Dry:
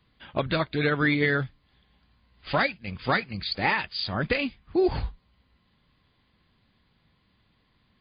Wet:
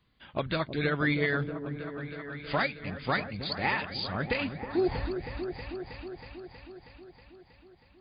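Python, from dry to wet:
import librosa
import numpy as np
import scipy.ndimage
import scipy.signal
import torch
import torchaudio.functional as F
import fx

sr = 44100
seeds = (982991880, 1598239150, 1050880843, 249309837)

y = fx.echo_opening(x, sr, ms=319, hz=400, octaves=1, feedback_pct=70, wet_db=-6)
y = y * librosa.db_to_amplitude(-4.5)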